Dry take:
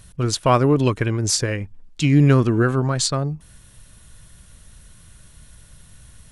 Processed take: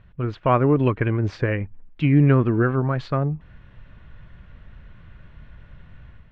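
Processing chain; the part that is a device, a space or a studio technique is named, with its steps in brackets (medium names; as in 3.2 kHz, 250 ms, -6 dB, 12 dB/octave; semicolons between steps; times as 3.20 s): action camera in a waterproof case (low-pass 2.5 kHz 24 dB/octave; level rider gain up to 7 dB; trim -4 dB; AAC 96 kbps 24 kHz)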